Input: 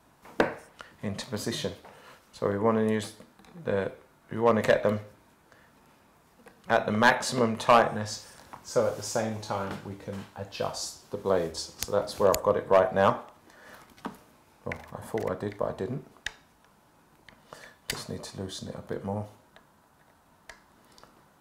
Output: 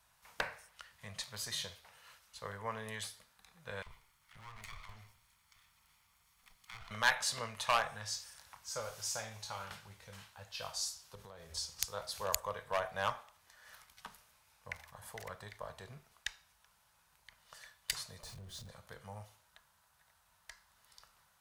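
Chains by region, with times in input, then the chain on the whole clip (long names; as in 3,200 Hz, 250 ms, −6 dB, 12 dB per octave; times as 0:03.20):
0:03.82–0:06.91: lower of the sound and its delayed copy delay 0.91 ms + downward compressor 4 to 1, threshold −37 dBFS + multiband delay without the direct sound highs, lows 40 ms, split 860 Hz
0:11.15–0:11.81: low-shelf EQ 450 Hz +7.5 dB + downward compressor 20 to 1, threshold −30 dBFS
0:18.23–0:18.69: converter with a step at zero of −38 dBFS + tilt shelving filter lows +9.5 dB, about 710 Hz + downward compressor 2.5 to 1, threshold −34 dBFS
whole clip: guitar amp tone stack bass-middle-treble 10-0-10; notch filter 7,300 Hz, Q 29; level −1.5 dB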